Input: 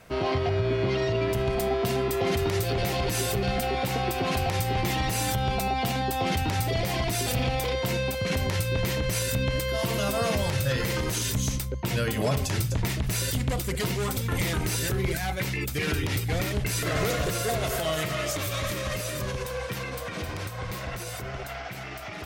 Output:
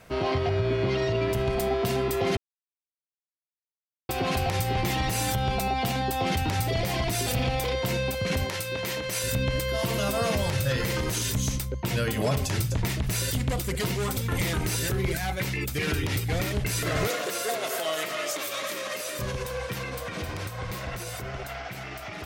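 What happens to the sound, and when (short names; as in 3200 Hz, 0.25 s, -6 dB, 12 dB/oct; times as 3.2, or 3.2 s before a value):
2.37–4.09 mute
8.45–9.24 HPF 390 Hz 6 dB/oct
17.07–19.19 Bessel high-pass 350 Hz, order 4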